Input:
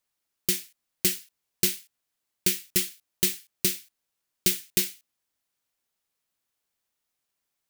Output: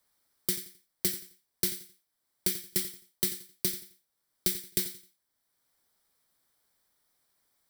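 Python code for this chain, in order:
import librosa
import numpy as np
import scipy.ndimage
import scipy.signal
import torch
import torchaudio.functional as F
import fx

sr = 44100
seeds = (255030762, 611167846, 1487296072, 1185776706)

y = fx.peak_eq(x, sr, hz=2700.0, db=-13.5, octaves=0.27)
y = fx.notch(y, sr, hz=6700.0, q=5.6)
y = fx.echo_feedback(y, sr, ms=87, feedback_pct=24, wet_db=-13.5)
y = fx.band_squash(y, sr, depth_pct=40)
y = y * librosa.db_to_amplitude(-4.0)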